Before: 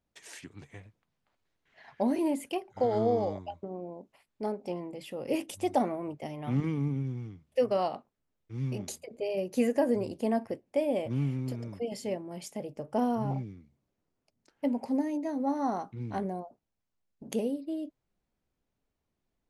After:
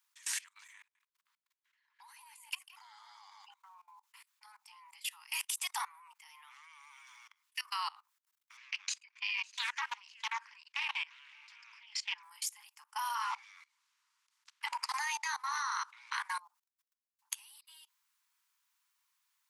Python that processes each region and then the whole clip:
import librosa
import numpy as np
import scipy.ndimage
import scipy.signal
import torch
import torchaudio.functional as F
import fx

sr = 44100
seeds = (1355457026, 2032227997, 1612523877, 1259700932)

y = fx.chain(x, sr, fx.level_steps(step_db=17),
    fx.echo_single(ms=168, db=-6.5), at=(0.78, 3.45))
y = fx.chain(y, sr, fx.cabinet(low_hz=120.0, low_slope=24, high_hz=5900.0, hz=(790.0, 1600.0, 2500.0), db=(-9, 5, 9)),
    fx.echo_single(ms=554, db=-13.0),
    fx.doppler_dist(depth_ms=0.38), at=(8.57, 12.23))
y = fx.spec_clip(y, sr, under_db=24, at=(13.14, 16.38), fade=0.02)
y = fx.bessel_lowpass(y, sr, hz=5600.0, order=2, at=(13.14, 16.38), fade=0.02)
y = scipy.signal.sosfilt(scipy.signal.butter(16, 920.0, 'highpass', fs=sr, output='sos'), y)
y = fx.high_shelf(y, sr, hz=4800.0, db=8.5)
y = fx.level_steps(y, sr, step_db=22)
y = y * 10.0 ** (8.5 / 20.0)